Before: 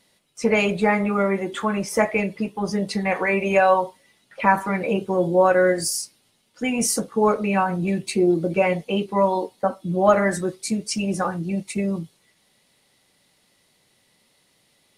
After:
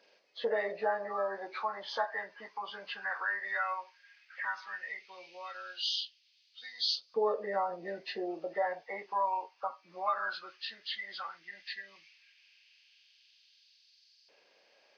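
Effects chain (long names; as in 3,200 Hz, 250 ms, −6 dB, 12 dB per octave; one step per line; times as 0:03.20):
hearing-aid frequency compression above 1,100 Hz 1.5 to 1
auto-filter high-pass saw up 0.14 Hz 460–4,600 Hz
downward compressor 1.5 to 1, threshold −45 dBFS, peak gain reduction 12.5 dB
level −3.5 dB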